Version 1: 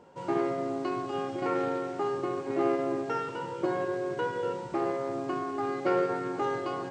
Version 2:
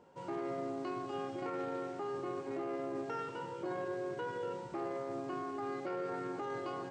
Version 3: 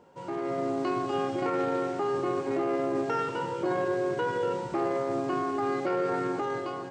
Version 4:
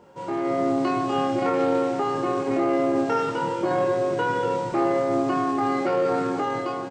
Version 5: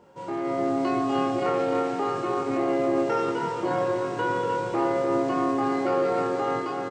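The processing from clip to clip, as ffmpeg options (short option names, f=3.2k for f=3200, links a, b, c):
-af "alimiter=level_in=0.5dB:limit=-24dB:level=0:latency=1:release=16,volume=-0.5dB,volume=-6.5dB"
-af "dynaudnorm=f=120:g=9:m=6dB,volume=4.5dB"
-filter_complex "[0:a]asplit=2[a][b];[b]adelay=26,volume=-4dB[c];[a][c]amix=inputs=2:normalize=0,volume=4.5dB"
-af "aecho=1:1:302|604|906|1208|1510|1812|2114|2416:0.447|0.264|0.155|0.0917|0.0541|0.0319|0.0188|0.0111,volume=-3dB"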